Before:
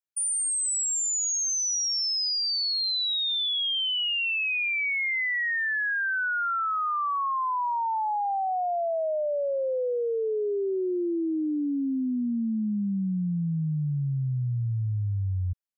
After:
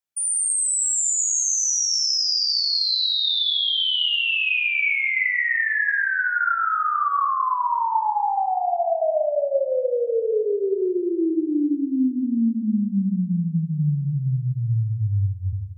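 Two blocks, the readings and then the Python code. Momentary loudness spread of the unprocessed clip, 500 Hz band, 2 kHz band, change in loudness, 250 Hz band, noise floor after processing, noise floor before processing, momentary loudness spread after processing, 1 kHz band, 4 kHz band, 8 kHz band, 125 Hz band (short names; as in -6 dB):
5 LU, +5.5 dB, +5.0 dB, +5.0 dB, +5.5 dB, -29 dBFS, -27 dBFS, 5 LU, +5.5 dB, +5.5 dB, +5.5 dB, +4.5 dB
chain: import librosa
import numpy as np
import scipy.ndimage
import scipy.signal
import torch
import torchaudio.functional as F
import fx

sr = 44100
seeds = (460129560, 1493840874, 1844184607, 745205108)

y = fx.rev_schroeder(x, sr, rt60_s=1.8, comb_ms=27, drr_db=0.5)
y = y * 10.0 ** (2.5 / 20.0)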